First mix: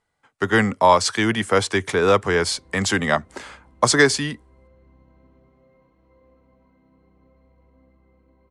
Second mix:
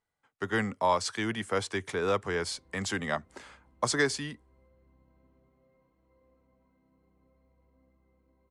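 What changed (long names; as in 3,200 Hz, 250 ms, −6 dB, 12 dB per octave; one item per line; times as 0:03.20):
speech −11.5 dB
background −10.0 dB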